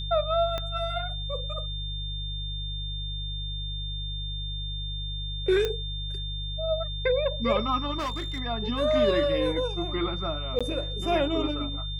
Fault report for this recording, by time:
hum 50 Hz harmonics 3 -34 dBFS
whine 3.6 kHz -35 dBFS
0.58 s: pop -17 dBFS
5.65 s: pop -15 dBFS
7.98–8.40 s: clipped -27 dBFS
10.59–10.61 s: dropout 16 ms

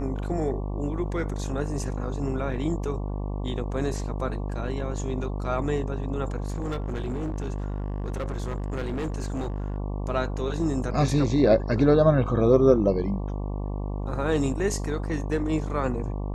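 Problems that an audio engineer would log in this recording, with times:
buzz 50 Hz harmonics 23 -30 dBFS
6.44–9.76 s: clipped -25.5 dBFS

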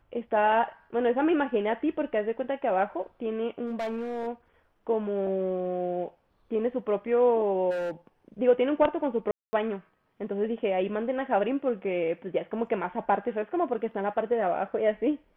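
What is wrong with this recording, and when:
3.66–4.28 s: clipped -27.5 dBFS
7.70–7.91 s: clipped -28 dBFS
9.31–9.53 s: dropout 220 ms

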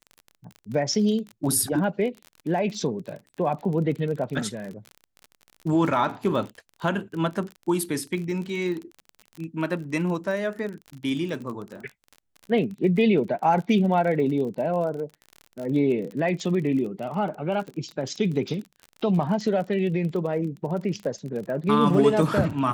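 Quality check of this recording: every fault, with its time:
crackle 36 per s -32 dBFS

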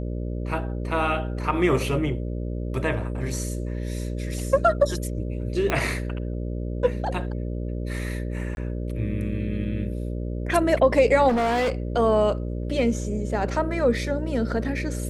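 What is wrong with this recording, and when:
buzz 60 Hz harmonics 10 -29 dBFS
5.70 s: pop -9 dBFS
8.55–8.57 s: dropout 21 ms
11.28–11.72 s: clipped -20 dBFS

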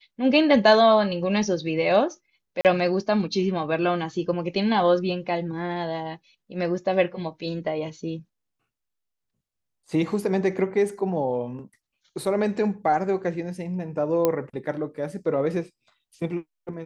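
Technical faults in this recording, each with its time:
2.61–2.65 s: dropout 38 ms
14.25 s: pop -8 dBFS

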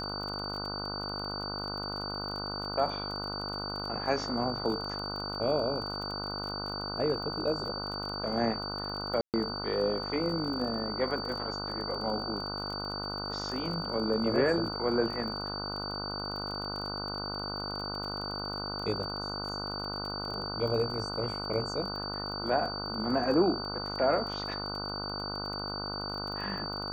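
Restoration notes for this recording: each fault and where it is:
buzz 50 Hz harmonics 30 -39 dBFS
crackle 30 per s -38 dBFS
whine 4.6 kHz -37 dBFS
9.21–9.34 s: dropout 128 ms

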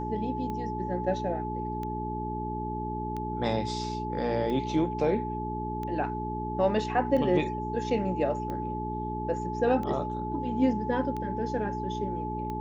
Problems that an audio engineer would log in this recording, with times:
hum 60 Hz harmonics 7 -35 dBFS
tick 45 rpm -24 dBFS
whine 860 Hz -34 dBFS

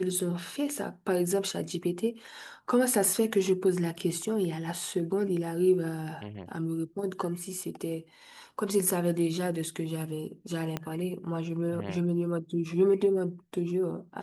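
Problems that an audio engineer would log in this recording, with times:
10.77 s: pop -17 dBFS

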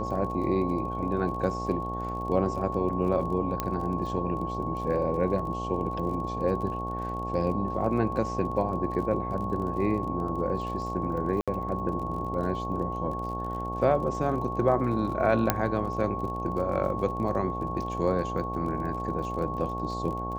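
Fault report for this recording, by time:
buzz 60 Hz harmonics 15 -35 dBFS
crackle 35 per s -37 dBFS
whine 1.1 kHz -33 dBFS
3.60 s: pop -13 dBFS
11.41–11.48 s: dropout 66 ms
15.50 s: pop -6 dBFS

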